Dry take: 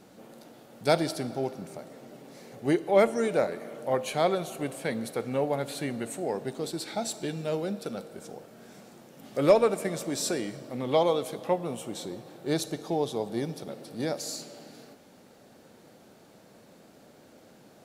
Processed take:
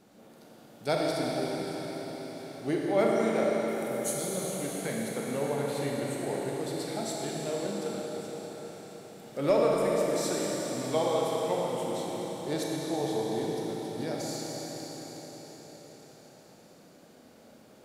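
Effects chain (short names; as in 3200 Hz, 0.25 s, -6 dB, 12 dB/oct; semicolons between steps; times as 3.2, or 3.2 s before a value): 3.68–4.36 EQ curve 300 Hz 0 dB, 1100 Hz -30 dB, 8300 Hz +15 dB; reverb RT60 5.5 s, pre-delay 28 ms, DRR -3.5 dB; gain -6 dB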